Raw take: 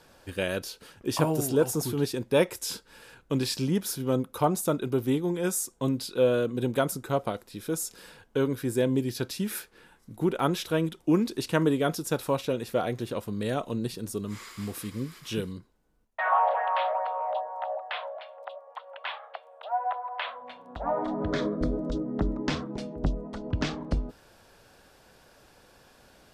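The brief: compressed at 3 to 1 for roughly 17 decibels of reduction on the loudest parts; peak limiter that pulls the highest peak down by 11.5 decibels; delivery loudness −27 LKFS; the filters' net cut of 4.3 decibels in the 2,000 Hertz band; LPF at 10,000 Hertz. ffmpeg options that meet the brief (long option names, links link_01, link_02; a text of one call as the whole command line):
ffmpeg -i in.wav -af "lowpass=10000,equalizer=frequency=2000:width_type=o:gain=-6,acompressor=threshold=-43dB:ratio=3,volume=20dB,alimiter=limit=-17.5dB:level=0:latency=1" out.wav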